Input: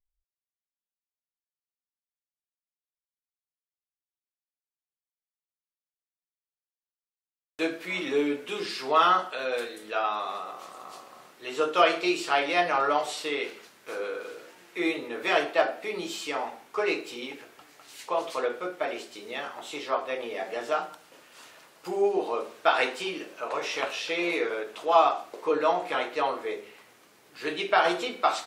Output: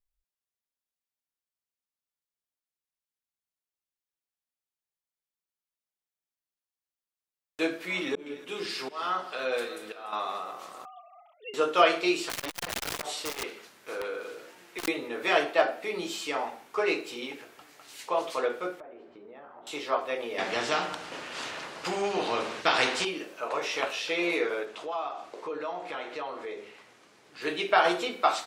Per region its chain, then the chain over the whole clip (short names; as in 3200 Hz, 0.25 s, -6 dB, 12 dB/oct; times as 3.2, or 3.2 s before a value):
7.97–10.13 auto swell 0.576 s + split-band echo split 950 Hz, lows 0.193 s, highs 0.293 s, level -15.5 dB
10.85–11.54 sine-wave speech + fixed phaser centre 700 Hz, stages 4
12.29–14.88 wrapped overs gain 23.5 dB + core saturation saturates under 730 Hz
18.8–19.67 LPF 1100 Hz + compressor 4:1, threshold -46 dBFS
20.38–23.05 air absorption 82 m + spectral compressor 2:1
24.65–27.42 compressor 2.5:1, threshold -36 dBFS + LPF 7600 Hz
whole clip: dry